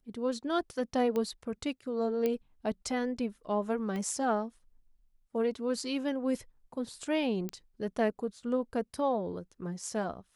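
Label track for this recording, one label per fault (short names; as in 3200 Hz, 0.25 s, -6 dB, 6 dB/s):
1.160000	1.160000	pop -21 dBFS
2.260000	2.260000	pop -18 dBFS
3.960000	3.960000	pop -26 dBFS
7.490000	7.490000	pop -22 dBFS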